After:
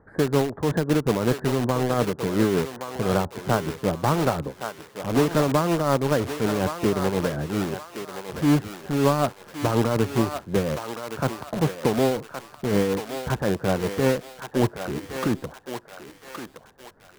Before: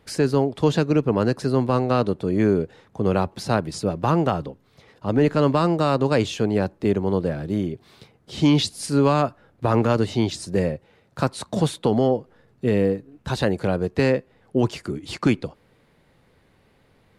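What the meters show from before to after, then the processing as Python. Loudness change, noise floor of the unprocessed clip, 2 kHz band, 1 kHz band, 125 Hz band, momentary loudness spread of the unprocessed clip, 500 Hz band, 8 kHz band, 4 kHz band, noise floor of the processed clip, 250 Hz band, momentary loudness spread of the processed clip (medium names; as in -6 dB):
-2.0 dB, -60 dBFS, +0.5 dB, -1.0 dB, -2.5 dB, 8 LU, -2.0 dB, +1.5 dB, -2.5 dB, -51 dBFS, -2.5 dB, 13 LU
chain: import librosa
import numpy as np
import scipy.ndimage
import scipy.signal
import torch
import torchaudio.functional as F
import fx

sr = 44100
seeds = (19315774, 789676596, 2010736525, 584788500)

p1 = scipy.signal.sosfilt(scipy.signal.ellip(4, 1.0, 40, 1700.0, 'lowpass', fs=sr, output='sos'), x)
p2 = (np.mod(10.0 ** (20.5 / 20.0) * p1 + 1.0, 2.0) - 1.0) / 10.0 ** (20.5 / 20.0)
p3 = p1 + (p2 * 10.0 ** (-6.0 / 20.0))
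p4 = p3 * (1.0 - 0.46 / 2.0 + 0.46 / 2.0 * np.cos(2.0 * np.pi * 5.4 * (np.arange(len(p3)) / sr)))
y = fx.echo_thinned(p4, sr, ms=1119, feedback_pct=42, hz=770.0, wet_db=-5)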